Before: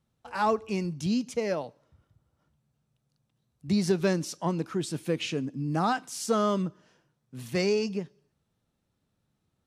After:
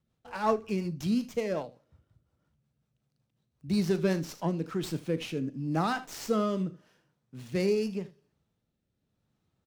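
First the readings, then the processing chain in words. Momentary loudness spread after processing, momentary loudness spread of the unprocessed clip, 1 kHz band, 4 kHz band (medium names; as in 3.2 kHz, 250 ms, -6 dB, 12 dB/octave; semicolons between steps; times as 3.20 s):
9 LU, 11 LU, -3.5 dB, -4.5 dB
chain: early reflections 37 ms -16 dB, 78 ms -17 dB; rotary cabinet horn 5.5 Hz, later 0.85 Hz, at 3.96 s; sliding maximum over 3 samples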